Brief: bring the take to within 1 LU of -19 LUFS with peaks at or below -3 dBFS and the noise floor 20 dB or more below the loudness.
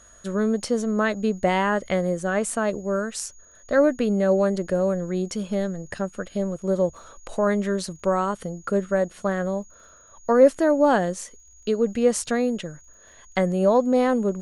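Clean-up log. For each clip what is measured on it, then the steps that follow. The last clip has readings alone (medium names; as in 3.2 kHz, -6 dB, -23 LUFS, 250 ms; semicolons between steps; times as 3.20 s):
tick rate 41 per s; steady tone 6.7 kHz; tone level -51 dBFS; loudness -23.5 LUFS; peak level -4.5 dBFS; loudness target -19.0 LUFS
-> de-click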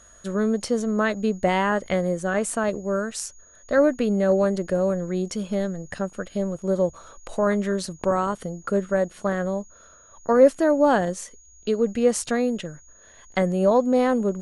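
tick rate 0 per s; steady tone 6.7 kHz; tone level -51 dBFS
-> band-stop 6.7 kHz, Q 30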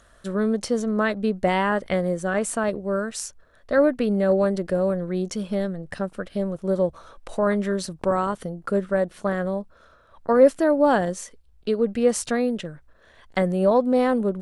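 steady tone not found; loudness -23.5 LUFS; peak level -4.5 dBFS; loudness target -19.0 LUFS
-> trim +4.5 dB; peak limiter -3 dBFS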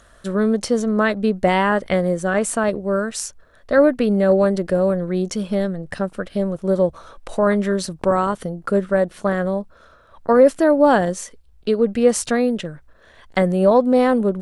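loudness -19.0 LUFS; peak level -3.0 dBFS; noise floor -51 dBFS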